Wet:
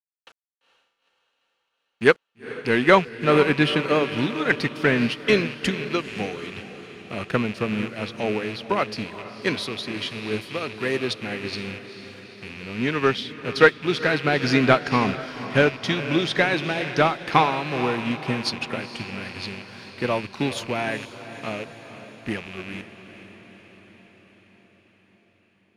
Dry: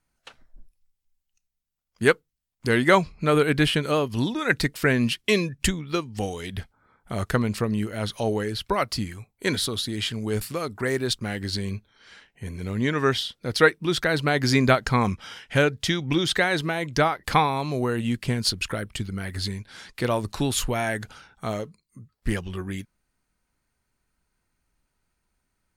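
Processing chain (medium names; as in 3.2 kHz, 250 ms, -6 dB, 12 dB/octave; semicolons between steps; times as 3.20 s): rattle on loud lows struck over -37 dBFS, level -21 dBFS; high-pass 150 Hz 12 dB/octave; peaking EQ 7.6 kHz -10.5 dB 0.23 oct; bit crusher 8-bit; in parallel at -6 dB: hard clipper -17.5 dBFS, distortion -10 dB; on the sum: distance through air 65 m; on a send: echo that smears into a reverb 461 ms, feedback 64%, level -9.5 dB; on the sum: upward expansion 1.5:1, over -30 dBFS; trim +2 dB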